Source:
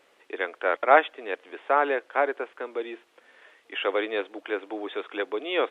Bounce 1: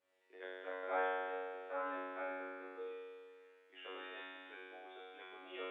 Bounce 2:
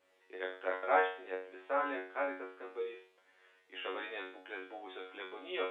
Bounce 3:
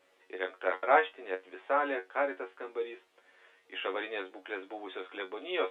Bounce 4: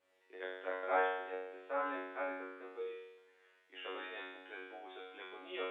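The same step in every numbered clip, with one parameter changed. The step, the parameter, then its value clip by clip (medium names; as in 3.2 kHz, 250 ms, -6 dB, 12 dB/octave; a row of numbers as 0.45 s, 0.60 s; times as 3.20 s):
feedback comb, decay: 2 s, 0.45 s, 0.16 s, 0.96 s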